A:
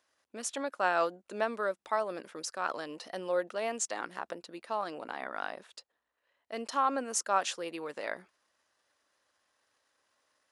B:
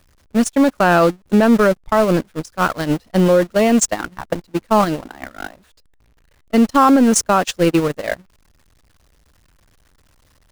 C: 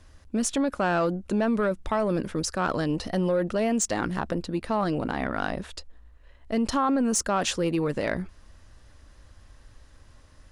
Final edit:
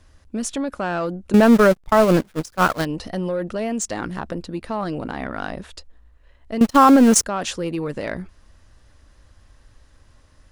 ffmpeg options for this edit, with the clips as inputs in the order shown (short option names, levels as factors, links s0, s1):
-filter_complex "[1:a]asplit=2[s0][s1];[2:a]asplit=3[s2][s3][s4];[s2]atrim=end=1.342[s5];[s0]atrim=start=1.338:end=2.852[s6];[s3]atrim=start=2.848:end=6.612[s7];[s1]atrim=start=6.608:end=7.242[s8];[s4]atrim=start=7.238[s9];[s5][s6]acrossfade=d=0.004:c1=hsin:c2=hsin[s10];[s10][s7]acrossfade=d=0.004:c1=hsin:c2=hsin[s11];[s11][s8]acrossfade=d=0.004:c1=hsin:c2=hsin[s12];[s12][s9]acrossfade=d=0.004:c1=hsin:c2=hsin"